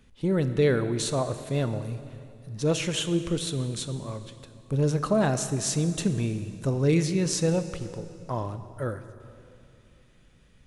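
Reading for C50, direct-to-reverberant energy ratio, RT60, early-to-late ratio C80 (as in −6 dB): 11.0 dB, 10.5 dB, 2.6 s, 12.0 dB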